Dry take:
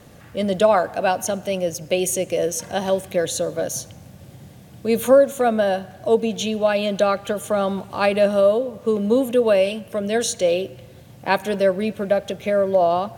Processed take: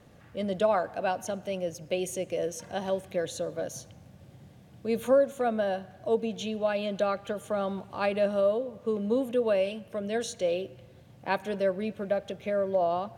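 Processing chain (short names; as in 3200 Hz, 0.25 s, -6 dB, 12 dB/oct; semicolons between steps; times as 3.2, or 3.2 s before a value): high shelf 6300 Hz -9.5 dB; gain -9 dB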